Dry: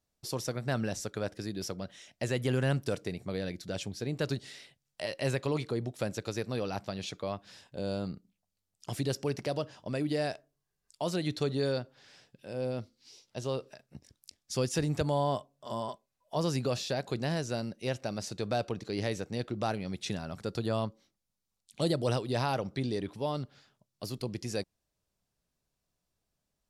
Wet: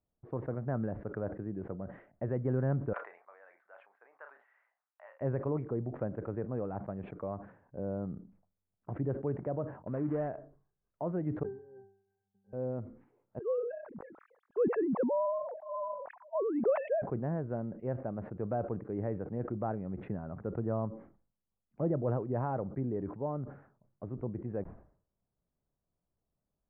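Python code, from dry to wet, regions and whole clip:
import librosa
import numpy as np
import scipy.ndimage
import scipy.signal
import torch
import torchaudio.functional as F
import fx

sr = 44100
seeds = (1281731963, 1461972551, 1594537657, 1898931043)

y = fx.chain(x, sr, fx.highpass(hz=930.0, slope=24),
    fx.doubler(ms=35.0, db=-12), at=(2.93, 5.21))
y = fx.chain(y, sr, fx.dead_time(dead_ms=0.18),
    fx.high_shelf(hz=2700.0, db=12.0), at=(9.87, 10.28))
y = fx.chain(y, sr, fx.block_float(bits=3),
    fx.octave_resonator(note='G', decay_s=0.6), at=(11.43, 12.53))
y = fx.chain(y, sr, fx.sine_speech(),
    fx.low_shelf(hz=320.0, db=5.5),
    fx.sustainer(db_per_s=53.0), at=(13.39, 17.02))
y = scipy.signal.sosfilt(scipy.signal.bessel(8, 920.0, 'lowpass', norm='mag', fs=sr, output='sos'), y)
y = fx.sustainer(y, sr, db_per_s=110.0)
y = F.gain(torch.from_numpy(y), -1.5).numpy()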